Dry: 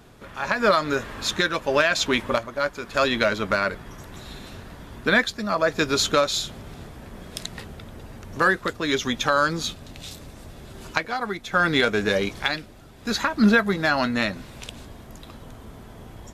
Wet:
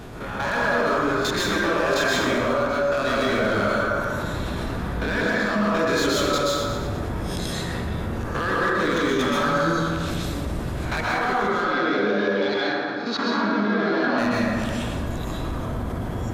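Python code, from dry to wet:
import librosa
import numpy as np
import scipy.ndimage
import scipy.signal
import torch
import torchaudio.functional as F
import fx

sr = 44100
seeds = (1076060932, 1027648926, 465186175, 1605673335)

y = fx.spec_swells(x, sr, rise_s=0.38)
y = fx.high_shelf(y, sr, hz=2200.0, db=-5.5)
y = fx.level_steps(y, sr, step_db=14)
y = np.clip(y, -10.0 ** (-25.5 / 20.0), 10.0 ** (-25.5 / 20.0))
y = fx.cabinet(y, sr, low_hz=170.0, low_slope=24, high_hz=4800.0, hz=(170.0, 930.0, 1800.0, 2700.0), db=(-9, -3, -4, -5), at=(11.49, 14.18))
y = fx.echo_feedback(y, sr, ms=116, feedback_pct=52, wet_db=-11)
y = fx.rev_plate(y, sr, seeds[0], rt60_s=1.5, hf_ratio=0.35, predelay_ms=115, drr_db=-6.5)
y = fx.env_flatten(y, sr, amount_pct=50)
y = y * 10.0 ** (-1.0 / 20.0)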